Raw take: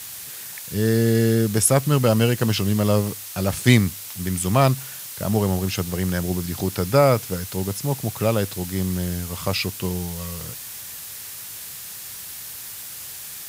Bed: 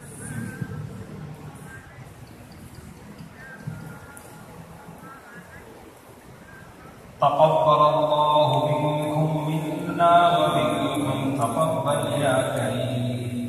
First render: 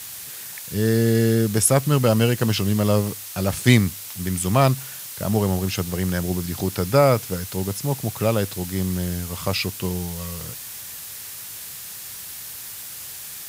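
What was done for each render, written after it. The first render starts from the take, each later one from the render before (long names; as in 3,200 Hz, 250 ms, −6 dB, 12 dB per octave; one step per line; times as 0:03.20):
no processing that can be heard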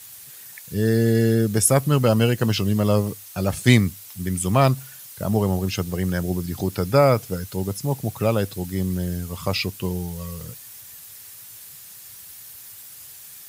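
broadband denoise 9 dB, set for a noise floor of −36 dBFS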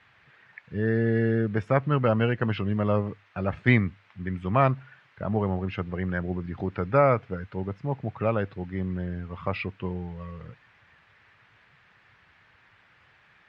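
low-pass filter 2,000 Hz 24 dB per octave
tilt shelving filter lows −6 dB, about 1,400 Hz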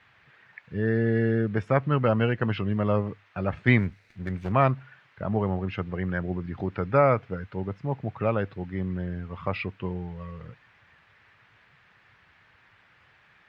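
0:03.78–0:04.52: lower of the sound and its delayed copy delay 0.48 ms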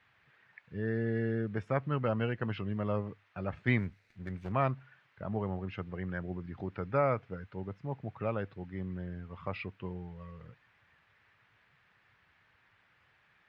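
level −8.5 dB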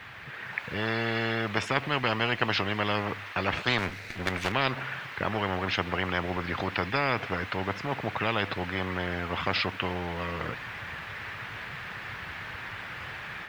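automatic gain control gain up to 6 dB
every bin compressed towards the loudest bin 4 to 1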